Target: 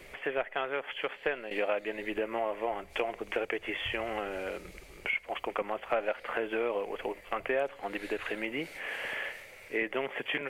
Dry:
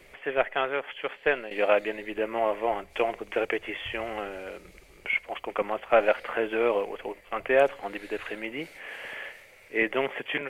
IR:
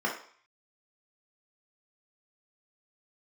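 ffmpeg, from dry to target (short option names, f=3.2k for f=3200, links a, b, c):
-af "acompressor=threshold=-34dB:ratio=3,volume=3dB"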